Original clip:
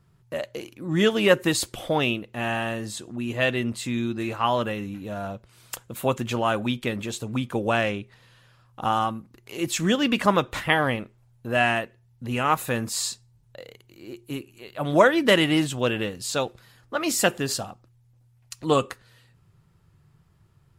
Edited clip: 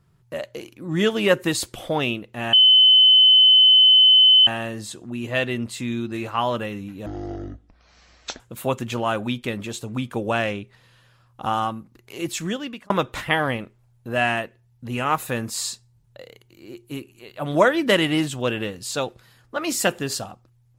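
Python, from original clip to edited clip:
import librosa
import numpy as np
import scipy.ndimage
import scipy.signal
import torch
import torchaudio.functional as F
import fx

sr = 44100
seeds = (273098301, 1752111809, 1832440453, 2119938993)

y = fx.edit(x, sr, fx.insert_tone(at_s=2.53, length_s=1.94, hz=3040.0, db=-9.5),
    fx.speed_span(start_s=5.12, length_s=0.67, speed=0.5),
    fx.fade_out_span(start_s=9.59, length_s=0.7), tone=tone)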